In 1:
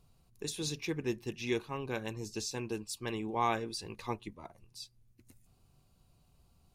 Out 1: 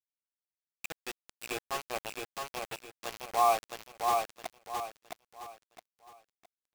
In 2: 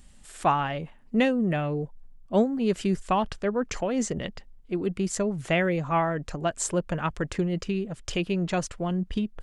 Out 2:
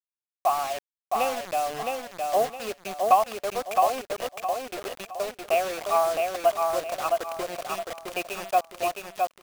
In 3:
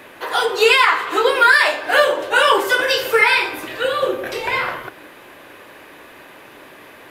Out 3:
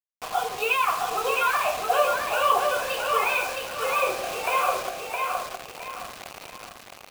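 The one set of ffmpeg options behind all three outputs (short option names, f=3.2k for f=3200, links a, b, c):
-filter_complex "[0:a]highpass=350,dynaudnorm=f=240:g=5:m=11dB,asplit=3[a][b][c];[a]bandpass=f=730:t=q:w=8,volume=0dB[d];[b]bandpass=f=1.09k:t=q:w=8,volume=-6dB[e];[c]bandpass=f=2.44k:t=q:w=8,volume=-9dB[f];[d][e][f]amix=inputs=3:normalize=0,acrusher=bits=5:mix=0:aa=0.000001,asplit=2[g][h];[h]aecho=0:1:664|1328|1992|2656:0.668|0.221|0.0728|0.024[i];[g][i]amix=inputs=2:normalize=0,volume=1.5dB"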